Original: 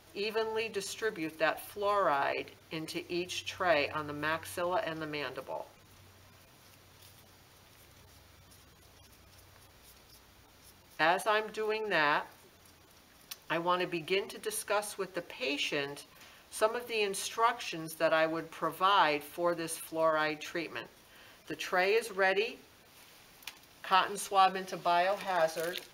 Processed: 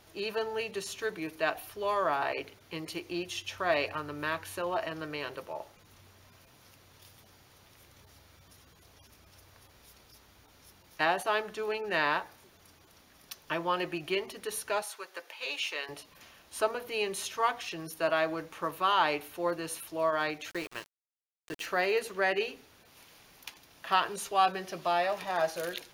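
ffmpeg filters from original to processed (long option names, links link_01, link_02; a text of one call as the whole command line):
ffmpeg -i in.wav -filter_complex "[0:a]asettb=1/sr,asplit=3[link_01][link_02][link_03];[link_01]atrim=end=14.824[link_04];[link_02]atrim=start=14.82:end=15.89,asetpts=PTS-STARTPTS,afade=type=in:duration=0.004:curve=qsin,afade=type=out:start_time=1.066:duration=0.004:curve=qsin,highpass=720[link_05];[link_03]atrim=start=15.886[link_06];[link_04][link_05]acrossfade=duration=0.004:curve1=hsin:curve2=qsin[link_07];[link_07][link_06]acrossfade=duration=0.004:curve1=qsin:curve2=hsin,asettb=1/sr,asplit=3[link_08][link_09][link_10];[link_08]atrim=end=20.504[link_11];[link_09]atrim=start=20.5:end=21.66,asetpts=PTS-STARTPTS,afade=type=in:duration=0.004:curve=qsin,afade=type=out:start_time=1.156:duration=0.004:curve=qsin,aeval=exprs='val(0)*gte(abs(val(0)),0.00891)':channel_layout=same[link_12];[link_10]atrim=start=21.656[link_13];[link_11][link_12]acrossfade=duration=0.004:curve1=hsin:curve2=qsin[link_14];[link_14][link_13]acrossfade=duration=0.004:curve1=qsin:curve2=hsin" out.wav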